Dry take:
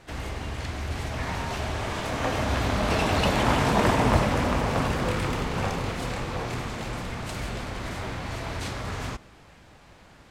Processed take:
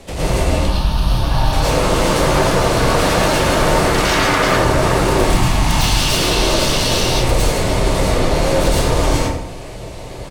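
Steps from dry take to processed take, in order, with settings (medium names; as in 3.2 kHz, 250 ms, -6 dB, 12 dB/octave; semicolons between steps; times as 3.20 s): 5.22–6.01 s: elliptic band-stop 360–920 Hz; 5.70–7.09 s: time-frequency box 2.7–6.4 kHz +11 dB; fifteen-band graphic EQ 630 Hz +4 dB, 1.6 kHz -12 dB, 10 kHz +6 dB; compression, threshold -25 dBFS, peak gain reduction 10 dB; 0.55–1.53 s: static phaser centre 2.2 kHz, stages 6; 3.94–4.45 s: small resonant body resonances 320/900 Hz, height 17 dB, ringing for 30 ms; frequency shift -130 Hz; sine folder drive 17 dB, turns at -12 dBFS; delay 92 ms -12 dB; plate-style reverb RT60 0.57 s, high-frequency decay 0.55×, pre-delay 95 ms, DRR -8 dB; trim -8.5 dB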